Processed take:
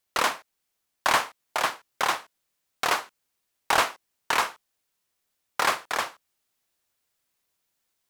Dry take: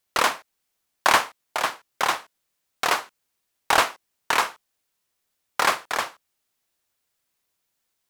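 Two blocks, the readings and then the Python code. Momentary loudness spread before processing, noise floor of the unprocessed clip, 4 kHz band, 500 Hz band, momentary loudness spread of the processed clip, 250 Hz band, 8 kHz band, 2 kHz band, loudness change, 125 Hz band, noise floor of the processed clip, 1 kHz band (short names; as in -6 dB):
11 LU, -77 dBFS, -2.5 dB, -3.0 dB, 8 LU, -3.0 dB, -2.5 dB, -3.0 dB, -2.5 dB, -2.0 dB, -79 dBFS, -3.0 dB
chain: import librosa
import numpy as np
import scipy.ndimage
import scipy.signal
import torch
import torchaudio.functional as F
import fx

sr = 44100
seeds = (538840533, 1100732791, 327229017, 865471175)

p1 = fx.rider(x, sr, range_db=10, speed_s=0.5)
p2 = x + (p1 * 10.0 ** (-3.0 / 20.0))
p3 = 10.0 ** (-4.5 / 20.0) * np.tanh(p2 / 10.0 ** (-4.5 / 20.0))
y = p3 * 10.0 ** (-6.5 / 20.0)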